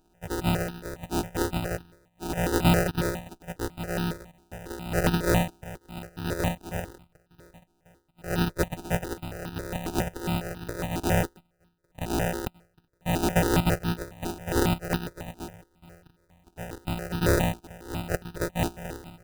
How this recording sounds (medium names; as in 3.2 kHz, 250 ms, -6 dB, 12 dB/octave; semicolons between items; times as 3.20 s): a buzz of ramps at a fixed pitch in blocks of 256 samples; tremolo triangle 0.83 Hz, depth 85%; aliases and images of a low sample rate 1.1 kHz, jitter 0%; notches that jump at a steady rate 7.3 Hz 530–2100 Hz